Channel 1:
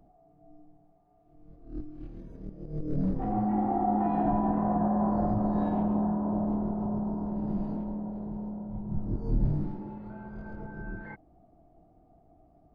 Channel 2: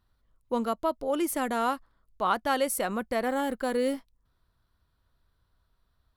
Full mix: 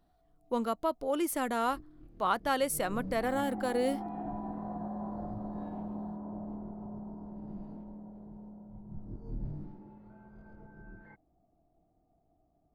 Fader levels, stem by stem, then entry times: −12.0, −3.0 decibels; 0.00, 0.00 seconds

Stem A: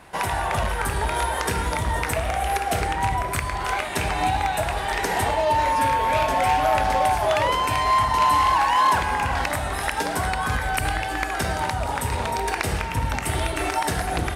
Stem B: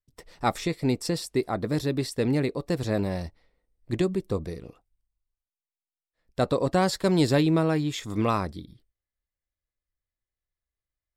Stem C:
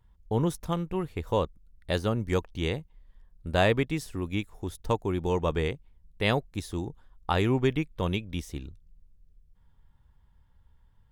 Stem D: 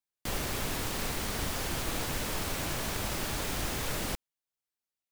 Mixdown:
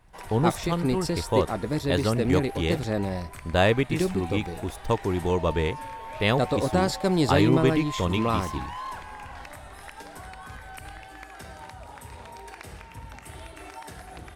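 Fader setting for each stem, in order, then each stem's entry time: −17.5 dB, −1.0 dB, +2.5 dB, muted; 0.00 s, 0.00 s, 0.00 s, muted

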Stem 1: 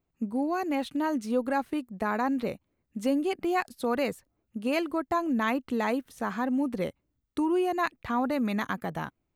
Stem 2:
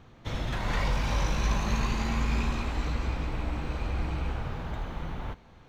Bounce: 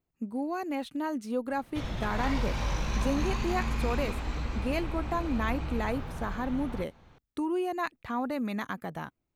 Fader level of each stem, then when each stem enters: −4.0, −3.0 decibels; 0.00, 1.50 seconds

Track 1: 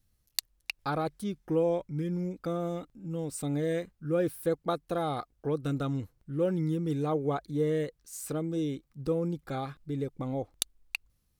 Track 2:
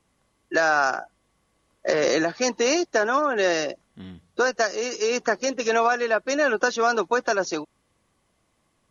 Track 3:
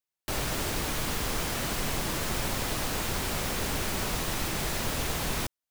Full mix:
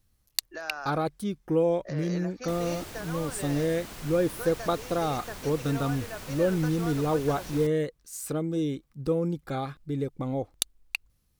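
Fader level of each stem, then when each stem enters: +3.0, −18.0, −11.5 decibels; 0.00, 0.00, 2.20 seconds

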